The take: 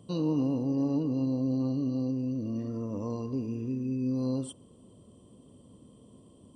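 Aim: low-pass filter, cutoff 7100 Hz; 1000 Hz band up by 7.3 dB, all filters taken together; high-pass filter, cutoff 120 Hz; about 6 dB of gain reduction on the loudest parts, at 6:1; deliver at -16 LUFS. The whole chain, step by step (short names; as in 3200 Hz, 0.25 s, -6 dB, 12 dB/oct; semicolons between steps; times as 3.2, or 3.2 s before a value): HPF 120 Hz; LPF 7100 Hz; bell 1000 Hz +8.5 dB; compressor 6:1, threshold -30 dBFS; gain +19 dB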